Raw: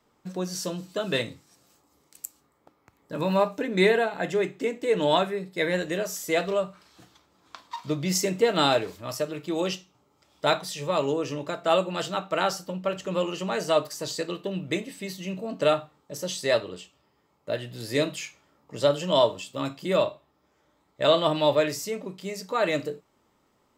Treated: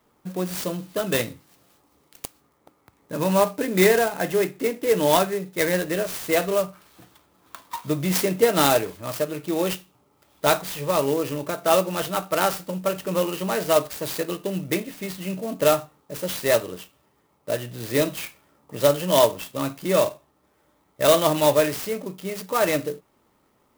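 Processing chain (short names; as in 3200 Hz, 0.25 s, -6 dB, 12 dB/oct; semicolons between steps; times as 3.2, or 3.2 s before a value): clock jitter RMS 0.047 ms; gain +3.5 dB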